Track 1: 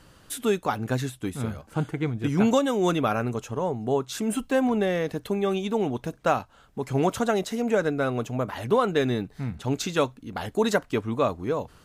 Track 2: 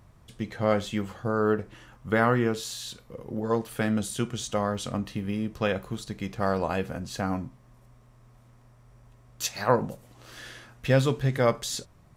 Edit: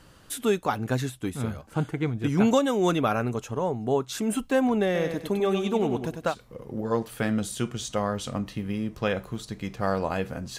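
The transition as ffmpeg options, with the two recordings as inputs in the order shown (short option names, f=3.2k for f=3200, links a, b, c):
-filter_complex "[0:a]asettb=1/sr,asplit=3[a][b][c];[a]atrim=end=4.854[d];[b]atrim=start=4.85:end=6.35,asetpts=PTS-STARTPTS,afade=t=in:d=0.004:c=qsin,afade=t=out:st=1.496:d=0.004:c=qsin,aecho=1:1:98|196|294:0.447|0.125|0.035,atrim=end_sample=66150[e];[c]atrim=start=6.346[f];[d][e]acrossfade=d=0.004:c1=hsin:c2=qsin[g];[g][f]acrossfade=d=0.004:c1=qsin:c2=hsin,apad=whole_dur=10.58,atrim=end=10.58,atrim=end=6.35,asetpts=PTS-STARTPTS[h];[1:a]atrim=start=2.84:end=7.17,asetpts=PTS-STARTPTS[i];[h][i]acrossfade=d=0.1:c1=tri:c2=tri"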